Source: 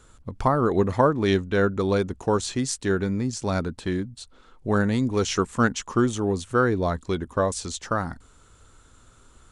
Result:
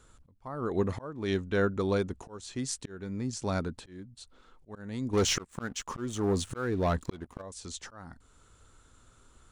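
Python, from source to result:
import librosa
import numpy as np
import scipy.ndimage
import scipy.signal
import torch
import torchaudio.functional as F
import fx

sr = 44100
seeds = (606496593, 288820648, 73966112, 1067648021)

y = fx.auto_swell(x, sr, attack_ms=469.0)
y = fx.leveller(y, sr, passes=2, at=(5.13, 7.42))
y = y * librosa.db_to_amplitude(-5.5)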